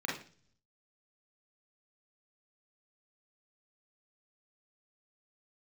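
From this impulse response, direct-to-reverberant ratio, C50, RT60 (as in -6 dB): -4.5 dB, 4.5 dB, 0.45 s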